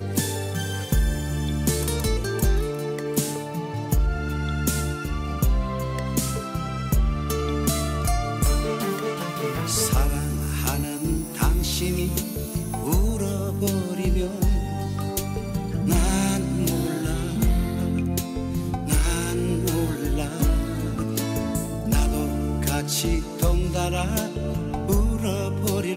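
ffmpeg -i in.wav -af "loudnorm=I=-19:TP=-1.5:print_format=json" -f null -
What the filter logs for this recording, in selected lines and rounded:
"input_i" : "-25.1",
"input_tp" : "-11.2",
"input_lra" : "1.1",
"input_thresh" : "-35.1",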